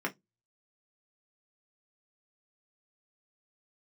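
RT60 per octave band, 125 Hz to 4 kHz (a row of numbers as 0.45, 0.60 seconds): 0.30, 0.25, 0.15, 0.15, 0.15, 0.15 seconds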